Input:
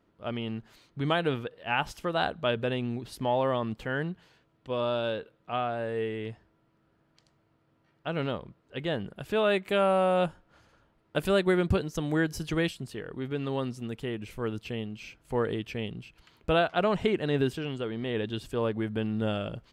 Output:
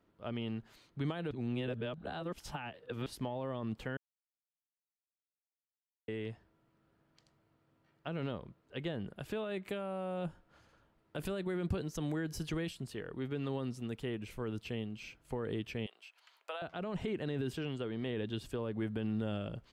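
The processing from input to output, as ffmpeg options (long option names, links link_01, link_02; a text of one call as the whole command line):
ffmpeg -i in.wav -filter_complex "[0:a]asettb=1/sr,asplit=3[link_01][link_02][link_03];[link_01]atrim=end=15.864[link_04];[link_02]atrim=start=15.86:end=16.62,asetpts=PTS-STARTPTS,afade=type=in:duration=0.004:curve=qsin,afade=type=out:start_time=0.756:duration=0.004:curve=qsin,highpass=frequency=650:width=0.5412,highpass=frequency=650:width=1.3066[link_05];[link_03]atrim=start=16.616[link_06];[link_04][link_05]acrossfade=duration=0.004:curve1=hsin:curve2=qsin[link_07];[link_07][link_06]acrossfade=duration=0.004:curve1=qsin:curve2=hsin,asplit=5[link_08][link_09][link_10][link_11][link_12];[link_08]atrim=end=1.312[link_13];[link_09]atrim=start=1.308:end=3.062,asetpts=PTS-STARTPTS,areverse[link_14];[link_10]atrim=start=3.058:end=3.97,asetpts=PTS-STARTPTS,afade=type=out:start_time=0.908:duration=0.004:curve=hsin[link_15];[link_11]atrim=start=3.97:end=6.08,asetpts=PTS-STARTPTS,volume=0[link_16];[link_12]atrim=start=6.08,asetpts=PTS-STARTPTS,afade=type=in:duration=0.004:curve=hsin[link_17];[link_13][link_14]acrossfade=duration=0.004:curve1=hsin:curve2=hsin[link_18];[link_15][link_16][link_17]concat=n=3:v=0:a=1[link_19];[link_18][link_19]acrossfade=duration=0.004:curve1=hsin:curve2=hsin,alimiter=limit=-22dB:level=0:latency=1:release=27,acrossover=split=380[link_20][link_21];[link_21]acompressor=threshold=-36dB:ratio=6[link_22];[link_20][link_22]amix=inputs=2:normalize=0,volume=-4dB" out.wav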